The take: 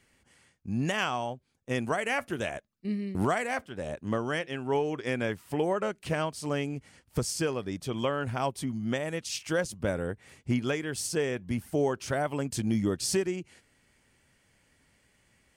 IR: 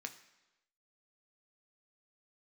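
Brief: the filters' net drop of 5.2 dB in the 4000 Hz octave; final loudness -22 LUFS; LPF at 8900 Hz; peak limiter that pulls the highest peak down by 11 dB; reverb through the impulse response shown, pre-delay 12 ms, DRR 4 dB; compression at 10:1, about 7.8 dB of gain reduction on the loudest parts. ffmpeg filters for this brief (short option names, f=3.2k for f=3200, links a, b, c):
-filter_complex "[0:a]lowpass=8.9k,equalizer=f=4k:t=o:g=-7.5,acompressor=threshold=-30dB:ratio=10,alimiter=level_in=7.5dB:limit=-24dB:level=0:latency=1,volume=-7.5dB,asplit=2[a][b];[1:a]atrim=start_sample=2205,adelay=12[c];[b][c]afir=irnorm=-1:irlink=0,volume=-2dB[d];[a][d]amix=inputs=2:normalize=0,volume=18.5dB"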